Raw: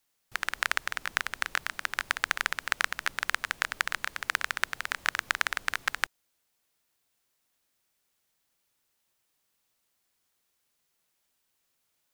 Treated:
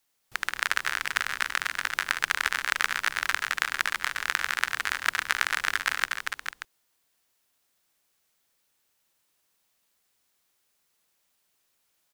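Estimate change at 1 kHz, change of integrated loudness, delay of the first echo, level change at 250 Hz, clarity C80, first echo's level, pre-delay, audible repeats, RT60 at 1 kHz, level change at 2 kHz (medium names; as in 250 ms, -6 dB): +3.0 dB, +3.0 dB, 76 ms, +2.0 dB, no reverb, -16.5 dB, no reverb, 5, no reverb, +3.5 dB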